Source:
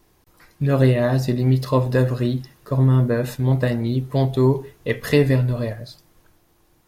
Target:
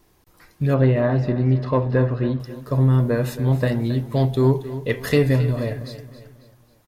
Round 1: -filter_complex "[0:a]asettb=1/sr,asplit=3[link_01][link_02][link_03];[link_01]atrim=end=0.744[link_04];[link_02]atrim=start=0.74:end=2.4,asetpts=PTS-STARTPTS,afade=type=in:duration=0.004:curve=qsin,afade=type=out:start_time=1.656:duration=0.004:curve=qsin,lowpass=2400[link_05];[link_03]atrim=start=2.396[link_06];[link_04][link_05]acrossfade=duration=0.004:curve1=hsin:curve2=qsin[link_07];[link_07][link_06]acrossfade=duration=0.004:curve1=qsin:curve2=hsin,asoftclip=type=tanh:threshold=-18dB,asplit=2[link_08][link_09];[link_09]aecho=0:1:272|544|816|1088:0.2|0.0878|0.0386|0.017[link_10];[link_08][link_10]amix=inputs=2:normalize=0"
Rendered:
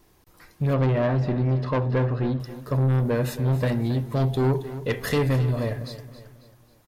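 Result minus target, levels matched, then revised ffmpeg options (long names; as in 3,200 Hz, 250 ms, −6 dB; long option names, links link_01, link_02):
soft clipping: distortion +14 dB
-filter_complex "[0:a]asettb=1/sr,asplit=3[link_01][link_02][link_03];[link_01]atrim=end=0.744[link_04];[link_02]atrim=start=0.74:end=2.4,asetpts=PTS-STARTPTS,afade=type=in:duration=0.004:curve=qsin,afade=type=out:start_time=1.656:duration=0.004:curve=qsin,lowpass=2400[link_05];[link_03]atrim=start=2.396[link_06];[link_04][link_05]acrossfade=duration=0.004:curve1=hsin:curve2=qsin[link_07];[link_07][link_06]acrossfade=duration=0.004:curve1=qsin:curve2=hsin,asoftclip=type=tanh:threshold=-6.5dB,asplit=2[link_08][link_09];[link_09]aecho=0:1:272|544|816|1088:0.2|0.0878|0.0386|0.017[link_10];[link_08][link_10]amix=inputs=2:normalize=0"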